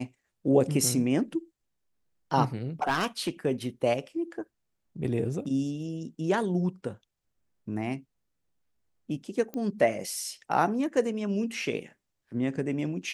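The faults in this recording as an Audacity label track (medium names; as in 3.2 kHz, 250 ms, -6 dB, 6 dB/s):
2.820000	3.290000	clipped -21 dBFS
9.540000	9.540000	pop -23 dBFS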